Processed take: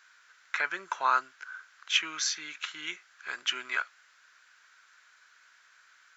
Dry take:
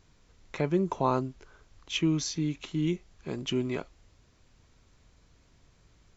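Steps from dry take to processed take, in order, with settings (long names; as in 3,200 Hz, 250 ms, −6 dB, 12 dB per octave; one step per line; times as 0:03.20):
high-pass with resonance 1,500 Hz, resonance Q 6
level +4 dB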